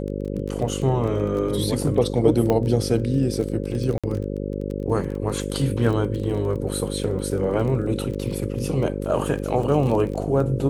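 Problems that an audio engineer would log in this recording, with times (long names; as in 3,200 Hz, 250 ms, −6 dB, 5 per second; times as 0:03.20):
mains buzz 50 Hz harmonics 11 −28 dBFS
surface crackle 21 per second −28 dBFS
0:02.50: click −10 dBFS
0:03.98–0:04.04: drop-out 56 ms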